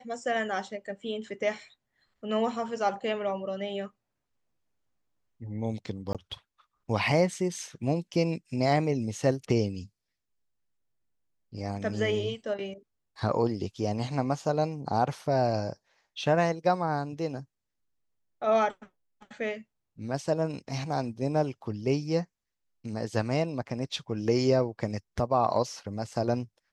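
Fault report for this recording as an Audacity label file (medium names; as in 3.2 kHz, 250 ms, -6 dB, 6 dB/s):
6.130000	6.150000	dropout 17 ms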